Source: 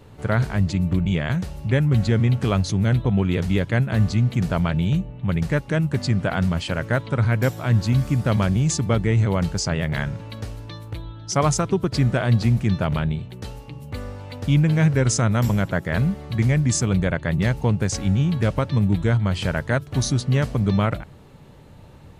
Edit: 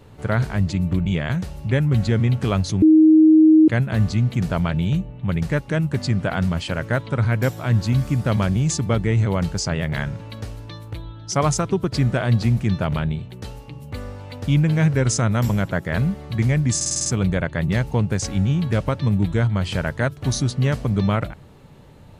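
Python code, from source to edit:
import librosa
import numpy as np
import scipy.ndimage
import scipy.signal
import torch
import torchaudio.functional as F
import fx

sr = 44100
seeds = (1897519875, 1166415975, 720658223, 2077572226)

y = fx.edit(x, sr, fx.bleep(start_s=2.82, length_s=0.86, hz=314.0, db=-8.0),
    fx.stutter(start_s=16.76, slice_s=0.05, count=7), tone=tone)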